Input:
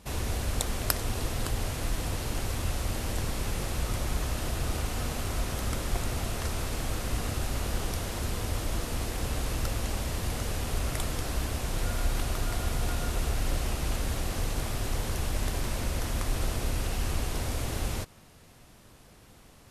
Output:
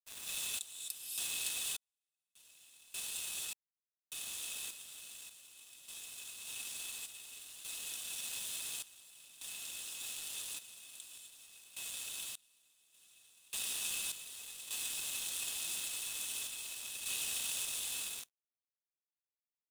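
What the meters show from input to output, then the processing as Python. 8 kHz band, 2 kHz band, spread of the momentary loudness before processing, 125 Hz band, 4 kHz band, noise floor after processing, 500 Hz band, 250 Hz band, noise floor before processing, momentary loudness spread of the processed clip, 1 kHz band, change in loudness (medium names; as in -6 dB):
-1.5 dB, -8.5 dB, 2 LU, under -35 dB, -3.5 dB, under -85 dBFS, -26.5 dB, -29.5 dB, -54 dBFS, 14 LU, -22.0 dB, -7.0 dB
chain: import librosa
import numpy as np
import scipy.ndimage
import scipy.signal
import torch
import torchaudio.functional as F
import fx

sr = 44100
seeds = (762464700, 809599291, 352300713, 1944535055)

y = scipy.signal.sosfilt(scipy.signal.cheby1(6, 9, 2500.0, 'highpass', fs=sr, output='sos'), x)
y = y + 0.6 * np.pad(y, (int(4.3 * sr / 1000.0), 0))[:len(y)]
y = fx.rev_gated(y, sr, seeds[0], gate_ms=280, shape='rising', drr_db=-4.0)
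y = np.sign(y) * np.maximum(np.abs(y) - 10.0 ** (-42.5 / 20.0), 0.0)
y = fx.tremolo_random(y, sr, seeds[1], hz=1.7, depth_pct=100)
y = y * 10.0 ** (5.5 / 20.0)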